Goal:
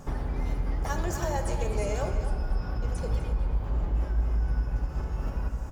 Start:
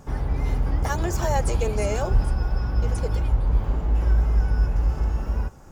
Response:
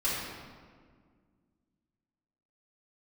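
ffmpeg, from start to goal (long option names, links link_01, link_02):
-filter_complex "[0:a]acompressor=threshold=-27dB:ratio=6,asplit=2[link_01][link_02];[link_02]adelay=250.7,volume=-9dB,highshelf=frequency=4000:gain=-5.64[link_03];[link_01][link_03]amix=inputs=2:normalize=0,asplit=2[link_04][link_05];[1:a]atrim=start_sample=2205,asetrate=40572,aresample=44100[link_06];[link_05][link_06]afir=irnorm=-1:irlink=0,volume=-14dB[link_07];[link_04][link_07]amix=inputs=2:normalize=0"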